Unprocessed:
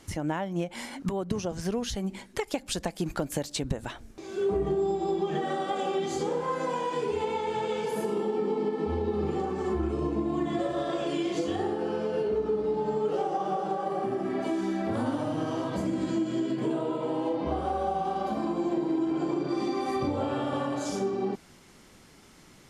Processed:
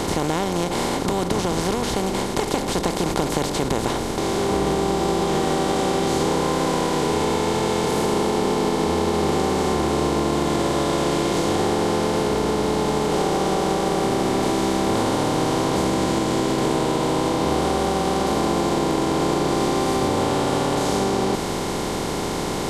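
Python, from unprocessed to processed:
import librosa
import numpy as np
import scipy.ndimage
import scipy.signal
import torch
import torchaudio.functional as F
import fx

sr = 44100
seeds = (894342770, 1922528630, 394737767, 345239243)

y = fx.bin_compress(x, sr, power=0.2)
y = F.gain(torch.from_numpy(y), -1.5).numpy()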